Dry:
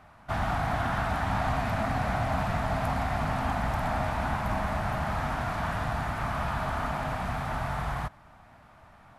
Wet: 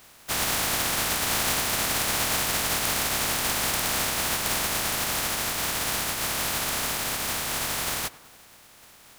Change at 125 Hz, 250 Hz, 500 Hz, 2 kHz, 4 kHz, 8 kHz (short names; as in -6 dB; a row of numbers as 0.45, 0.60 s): -8.0, -2.5, -1.0, +5.0, +17.0, +25.5 dB